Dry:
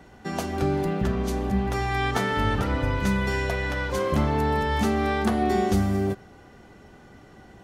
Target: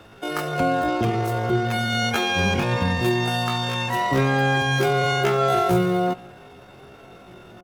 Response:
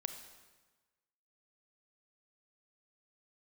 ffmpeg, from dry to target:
-filter_complex "[0:a]asplit=2[a][b];[1:a]atrim=start_sample=2205,asetrate=61740,aresample=44100,lowpass=3.1k[c];[b][c]afir=irnorm=-1:irlink=0,volume=-3dB[d];[a][d]amix=inputs=2:normalize=0,aeval=exprs='clip(val(0),-1,0.224)':c=same,asetrate=80880,aresample=44100,atempo=0.545254,asplit=2[e][f];[f]adelay=1574,volume=-29dB,highshelf=f=4k:g=-35.4[g];[e][g]amix=inputs=2:normalize=0"

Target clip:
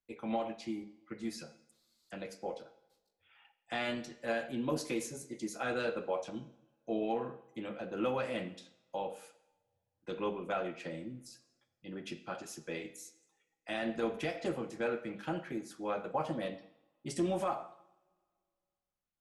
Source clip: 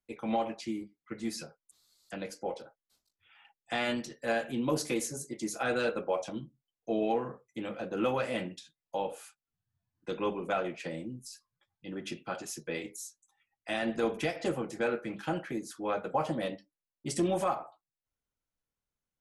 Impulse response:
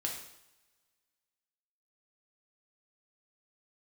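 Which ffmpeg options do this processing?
-filter_complex "[0:a]asplit=2[a][b];[1:a]atrim=start_sample=2205,lowpass=5.9k[c];[b][c]afir=irnorm=-1:irlink=0,volume=-7dB[d];[a][d]amix=inputs=2:normalize=0,volume=-7dB"

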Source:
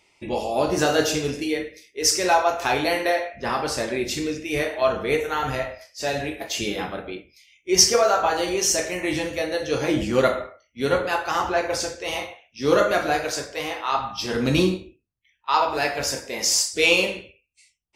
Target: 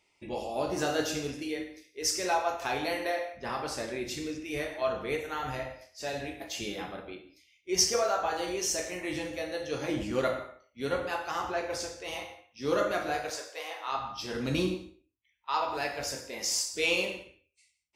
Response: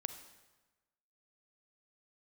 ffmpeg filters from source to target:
-filter_complex "[0:a]asettb=1/sr,asplit=3[a][b][c];[a]atrim=end=13.304[d];[b]atrim=start=13.3:end=13.87,asetpts=PTS-STARTPTS,afade=t=in:d=0.004:c=qsin,afade=t=out:st=0.566:d=0.004:c=qsin,highpass=f=430:w=0.5412,highpass=f=430:w=1.3066[e];[c]atrim=start=13.866[f];[d][e]acrossfade=d=0.004:c1=hsin:c2=qsin[g];[g][f]acrossfade=d=0.004:c1=qsin:c2=hsin[h];[1:a]atrim=start_sample=2205,afade=t=out:st=0.24:d=0.01,atrim=end_sample=11025[i];[h][i]afir=irnorm=-1:irlink=0,volume=-8dB"

